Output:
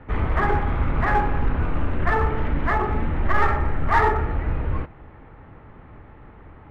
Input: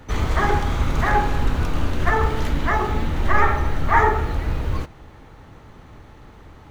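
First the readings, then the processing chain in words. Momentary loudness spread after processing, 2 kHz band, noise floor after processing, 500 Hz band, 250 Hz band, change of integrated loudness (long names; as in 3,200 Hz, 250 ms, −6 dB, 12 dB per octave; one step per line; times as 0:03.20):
6 LU, −2.0 dB, −46 dBFS, −1.5 dB, −1.0 dB, −1.5 dB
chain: low-pass filter 2,400 Hz 24 dB per octave
in parallel at −5 dB: hard clipping −16.5 dBFS, distortion −10 dB
on the sum: level −4.5 dB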